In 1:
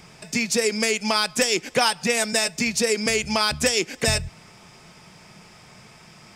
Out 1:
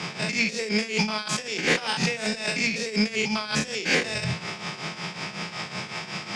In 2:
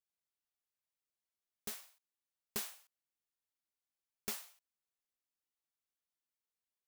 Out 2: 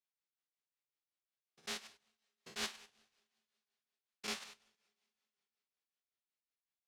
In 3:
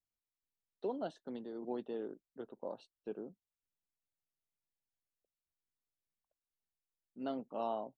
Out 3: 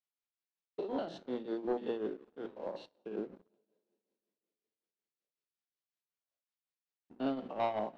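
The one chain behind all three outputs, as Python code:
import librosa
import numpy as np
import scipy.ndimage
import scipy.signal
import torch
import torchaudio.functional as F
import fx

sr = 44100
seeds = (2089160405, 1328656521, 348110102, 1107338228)

y = fx.spec_steps(x, sr, hold_ms=100)
y = scipy.signal.sosfilt(scipy.signal.butter(4, 120.0, 'highpass', fs=sr, output='sos'), y)
y = fx.high_shelf(y, sr, hz=2100.0, db=8.0)
y = fx.hum_notches(y, sr, base_hz=60, count=5)
y = fx.over_compress(y, sr, threshold_db=-31.0, ratio=-1.0)
y = fx.rev_double_slope(y, sr, seeds[0], early_s=0.43, late_s=3.3, knee_db=-19, drr_db=10.5)
y = fx.leveller(y, sr, passes=2)
y = scipy.signal.sosfilt(scipy.signal.butter(2, 4000.0, 'lowpass', fs=sr, output='sos'), y)
y = fx.tremolo_shape(y, sr, shape='triangle', hz=5.4, depth_pct=75)
y = y * librosa.db_to_amplitude(2.5)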